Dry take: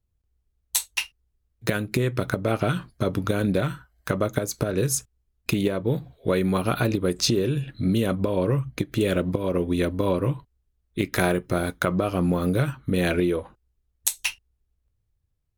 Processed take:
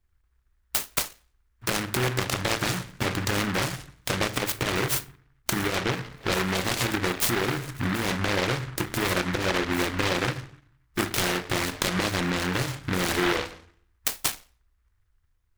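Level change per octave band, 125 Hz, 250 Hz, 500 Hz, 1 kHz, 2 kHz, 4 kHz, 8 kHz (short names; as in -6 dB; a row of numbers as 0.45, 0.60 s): -5.0, -5.0, -5.5, +2.0, +4.0, +4.5, +0.5 dB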